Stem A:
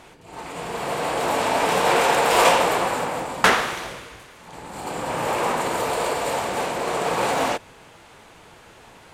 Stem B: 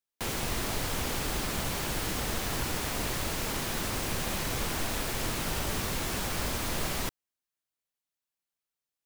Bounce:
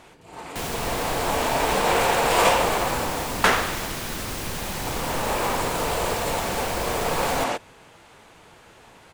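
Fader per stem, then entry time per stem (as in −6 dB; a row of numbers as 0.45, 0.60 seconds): −2.5, +1.5 decibels; 0.00, 0.35 seconds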